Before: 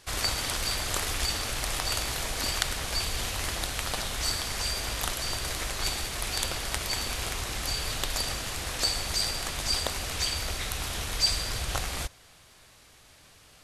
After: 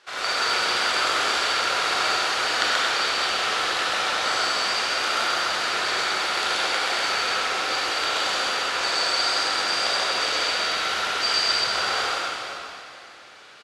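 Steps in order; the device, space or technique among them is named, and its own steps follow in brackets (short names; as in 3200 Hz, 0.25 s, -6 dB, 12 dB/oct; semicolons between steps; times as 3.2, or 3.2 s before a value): station announcement (BPF 430–4400 Hz; bell 1400 Hz +8 dB 0.32 oct; loudspeakers at several distances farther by 45 m -1 dB, 78 m -10 dB; reverb RT60 2.8 s, pre-delay 24 ms, DRR -6.5 dB)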